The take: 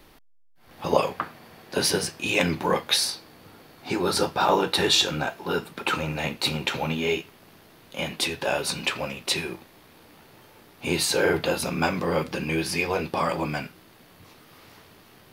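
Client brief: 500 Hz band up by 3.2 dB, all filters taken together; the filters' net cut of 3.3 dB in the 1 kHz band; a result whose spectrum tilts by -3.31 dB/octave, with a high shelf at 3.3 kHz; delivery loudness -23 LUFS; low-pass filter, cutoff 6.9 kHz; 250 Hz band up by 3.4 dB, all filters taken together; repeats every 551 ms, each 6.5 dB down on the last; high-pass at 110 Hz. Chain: high-pass 110 Hz; low-pass 6.9 kHz; peaking EQ 250 Hz +4 dB; peaking EQ 500 Hz +4 dB; peaking EQ 1 kHz -6.5 dB; treble shelf 3.3 kHz +6 dB; feedback delay 551 ms, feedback 47%, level -6.5 dB

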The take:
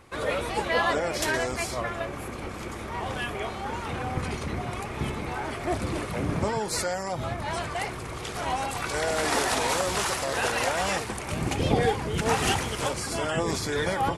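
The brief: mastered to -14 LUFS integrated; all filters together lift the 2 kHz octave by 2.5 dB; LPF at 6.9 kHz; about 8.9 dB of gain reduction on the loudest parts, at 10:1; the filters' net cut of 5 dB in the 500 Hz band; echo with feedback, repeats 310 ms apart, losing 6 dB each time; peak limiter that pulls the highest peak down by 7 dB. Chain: low-pass 6.9 kHz; peaking EQ 500 Hz -6.5 dB; peaking EQ 2 kHz +3.5 dB; compression 10:1, threshold -30 dBFS; peak limiter -27 dBFS; feedback delay 310 ms, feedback 50%, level -6 dB; trim +21 dB

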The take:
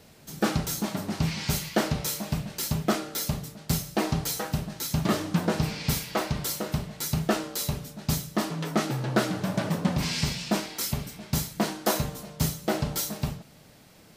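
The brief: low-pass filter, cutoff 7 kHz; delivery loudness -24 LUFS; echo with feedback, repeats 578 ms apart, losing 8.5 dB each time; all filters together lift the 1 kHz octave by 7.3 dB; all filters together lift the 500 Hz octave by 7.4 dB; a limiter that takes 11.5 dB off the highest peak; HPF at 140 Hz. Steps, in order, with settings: high-pass 140 Hz; low-pass 7 kHz; peaking EQ 500 Hz +7.5 dB; peaking EQ 1 kHz +7 dB; peak limiter -16 dBFS; feedback delay 578 ms, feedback 38%, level -8.5 dB; trim +5 dB

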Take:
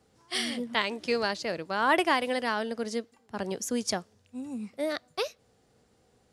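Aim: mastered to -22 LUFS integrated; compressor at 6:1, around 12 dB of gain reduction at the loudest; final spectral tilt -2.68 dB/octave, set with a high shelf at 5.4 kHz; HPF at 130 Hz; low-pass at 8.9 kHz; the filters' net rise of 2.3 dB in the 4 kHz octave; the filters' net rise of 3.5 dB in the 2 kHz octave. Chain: high-pass 130 Hz; low-pass 8.9 kHz; peaking EQ 2 kHz +4 dB; peaking EQ 4 kHz +3.5 dB; treble shelf 5.4 kHz -4.5 dB; compression 6:1, threshold -30 dBFS; trim +13.5 dB

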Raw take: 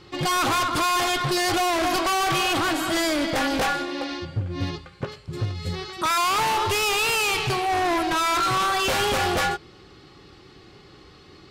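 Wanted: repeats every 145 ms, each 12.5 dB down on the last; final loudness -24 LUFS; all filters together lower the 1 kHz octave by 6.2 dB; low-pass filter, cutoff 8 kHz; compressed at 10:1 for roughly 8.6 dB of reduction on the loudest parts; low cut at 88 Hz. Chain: high-pass 88 Hz; low-pass 8 kHz; peaking EQ 1 kHz -8.5 dB; compression 10:1, threshold -31 dBFS; feedback delay 145 ms, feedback 24%, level -12.5 dB; trim +9 dB

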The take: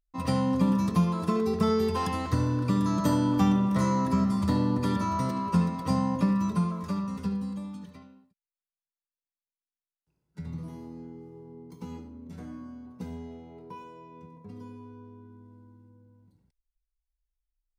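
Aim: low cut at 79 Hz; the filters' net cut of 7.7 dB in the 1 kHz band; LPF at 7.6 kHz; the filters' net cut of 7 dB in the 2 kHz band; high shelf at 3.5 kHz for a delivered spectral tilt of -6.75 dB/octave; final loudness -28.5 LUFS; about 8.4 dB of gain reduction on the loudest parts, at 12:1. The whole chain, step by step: high-pass 79 Hz; low-pass 7.6 kHz; peaking EQ 1 kHz -7 dB; peaking EQ 2 kHz -8.5 dB; treble shelf 3.5 kHz +5.5 dB; compression 12:1, threshold -28 dBFS; trim +6 dB

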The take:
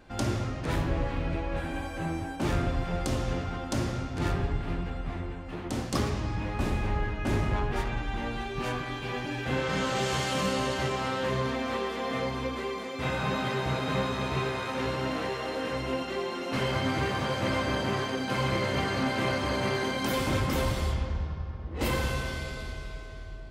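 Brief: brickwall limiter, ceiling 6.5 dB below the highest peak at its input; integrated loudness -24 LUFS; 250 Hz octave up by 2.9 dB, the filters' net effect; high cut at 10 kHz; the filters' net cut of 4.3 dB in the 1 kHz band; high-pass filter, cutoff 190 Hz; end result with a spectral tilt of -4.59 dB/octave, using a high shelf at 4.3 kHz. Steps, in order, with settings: high-pass 190 Hz; low-pass 10 kHz; peaking EQ 250 Hz +5.5 dB; peaking EQ 1 kHz -6 dB; treble shelf 4.3 kHz +4 dB; trim +8 dB; peak limiter -13 dBFS

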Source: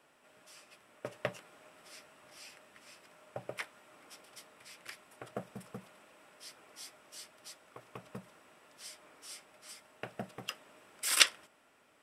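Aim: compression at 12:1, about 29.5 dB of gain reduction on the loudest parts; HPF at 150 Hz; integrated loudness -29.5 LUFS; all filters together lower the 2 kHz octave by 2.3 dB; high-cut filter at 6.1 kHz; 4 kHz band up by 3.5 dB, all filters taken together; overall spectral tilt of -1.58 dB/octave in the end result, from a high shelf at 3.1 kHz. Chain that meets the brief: high-pass 150 Hz; low-pass 6.1 kHz; peaking EQ 2 kHz -6.5 dB; treble shelf 3.1 kHz +4.5 dB; peaking EQ 4 kHz +4 dB; compression 12:1, threshold -47 dBFS; trim +24 dB

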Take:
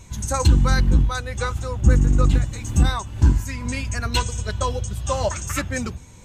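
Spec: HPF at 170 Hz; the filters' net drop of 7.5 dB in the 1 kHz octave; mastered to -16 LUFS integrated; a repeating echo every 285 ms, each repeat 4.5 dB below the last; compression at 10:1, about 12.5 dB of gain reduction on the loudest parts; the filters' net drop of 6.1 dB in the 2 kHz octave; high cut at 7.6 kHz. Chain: high-pass 170 Hz; low-pass 7.6 kHz; peaking EQ 1 kHz -8 dB; peaking EQ 2 kHz -5 dB; compression 10:1, threshold -33 dBFS; feedback delay 285 ms, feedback 60%, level -4.5 dB; trim +19.5 dB

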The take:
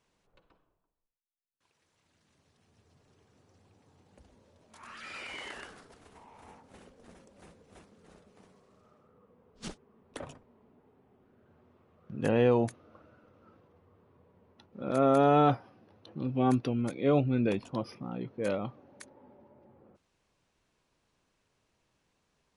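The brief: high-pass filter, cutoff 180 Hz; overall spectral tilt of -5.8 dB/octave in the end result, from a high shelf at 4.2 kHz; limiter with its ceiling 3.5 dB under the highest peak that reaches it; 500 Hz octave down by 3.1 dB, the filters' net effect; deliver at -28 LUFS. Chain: high-pass 180 Hz; peaking EQ 500 Hz -3.5 dB; treble shelf 4.2 kHz -4.5 dB; trim +6 dB; peak limiter -12 dBFS

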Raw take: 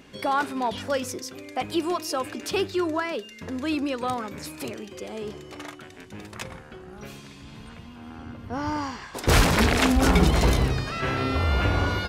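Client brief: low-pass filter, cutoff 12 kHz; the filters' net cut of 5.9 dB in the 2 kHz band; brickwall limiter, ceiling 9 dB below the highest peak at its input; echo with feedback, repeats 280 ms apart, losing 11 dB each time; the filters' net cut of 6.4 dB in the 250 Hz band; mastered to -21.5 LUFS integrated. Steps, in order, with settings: low-pass 12 kHz; peaking EQ 250 Hz -8.5 dB; peaking EQ 2 kHz -8 dB; peak limiter -17.5 dBFS; feedback delay 280 ms, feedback 28%, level -11 dB; trim +9 dB

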